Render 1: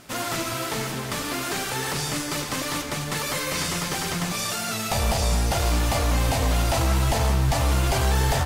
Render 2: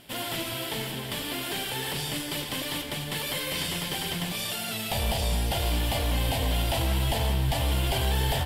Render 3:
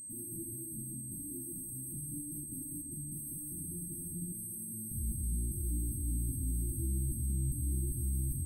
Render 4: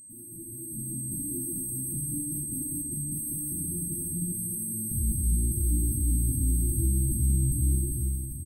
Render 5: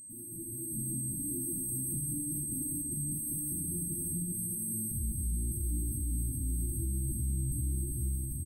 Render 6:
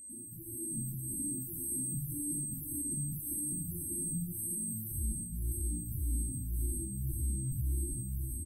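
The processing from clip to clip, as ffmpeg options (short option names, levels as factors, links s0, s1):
-af "equalizer=f=1250:t=o:w=0.33:g=-10,equalizer=f=3150:t=o:w=0.33:g=10,equalizer=f=6300:t=o:w=0.33:g=-10,equalizer=f=12500:t=o:w=0.33:g=6,volume=0.596"
-af "aeval=exprs='val(0)+0.02*sin(2*PI*8300*n/s)':c=same,afftfilt=real='re*(1-between(b*sr/4096,360,8300))':imag='im*(1-between(b*sr/4096,360,8300))':win_size=4096:overlap=0.75,volume=0.422"
-filter_complex "[0:a]dynaudnorm=f=130:g=11:m=3.55,asplit=2[s0][s1];[s1]aecho=0:1:233:0.266[s2];[s0][s2]amix=inputs=2:normalize=0,volume=0.75"
-af "alimiter=level_in=1.19:limit=0.0631:level=0:latency=1:release=312,volume=0.841"
-filter_complex "[0:a]asplit=2[s0][s1];[s1]afreqshift=-1.8[s2];[s0][s2]amix=inputs=2:normalize=1,volume=1.12"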